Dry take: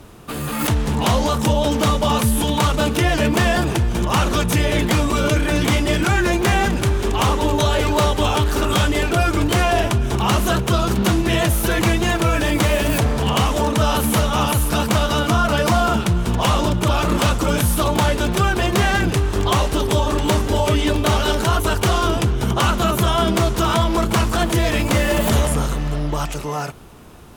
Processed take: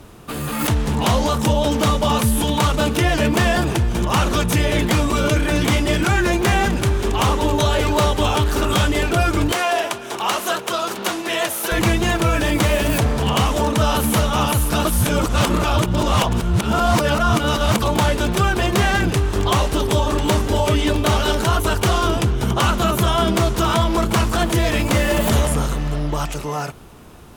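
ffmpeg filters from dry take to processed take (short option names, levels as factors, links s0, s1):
-filter_complex "[0:a]asettb=1/sr,asplit=3[s0][s1][s2];[s0]atrim=end=9.524[s3];[s1]atrim=start=9.52:end=11.72,asetpts=PTS-STARTPTS,afade=t=in:d=0.004:c=qsin,afade=t=out:st=2.196:d=0.004:c=qsin,highpass=470[s4];[s2]atrim=start=11.716[s5];[s3][s4]acrossfade=d=0.004:c1=hsin:c2=qsin[s6];[s6][s5]acrossfade=d=0.004:c1=qsin:c2=hsin,asplit=3[s7][s8][s9];[s7]atrim=end=14.852[s10];[s8]atrim=start=14.848:end=17.822,asetpts=PTS-STARTPTS,areverse[s11];[s9]atrim=start=17.818[s12];[s10][s11]acrossfade=d=0.004:c1=hsin:c2=hsin[s13];[s13][s12]acrossfade=d=0.004:c1=hsin:c2=hsin"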